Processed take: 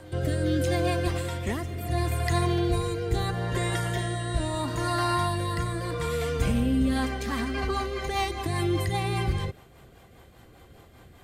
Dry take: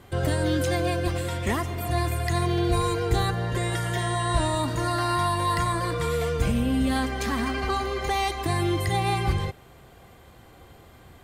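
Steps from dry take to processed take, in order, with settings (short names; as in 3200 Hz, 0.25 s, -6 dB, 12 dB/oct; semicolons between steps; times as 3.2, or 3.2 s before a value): reverse echo 0.398 s -19 dB; rotary speaker horn 0.75 Hz, later 5 Hz, at 6.62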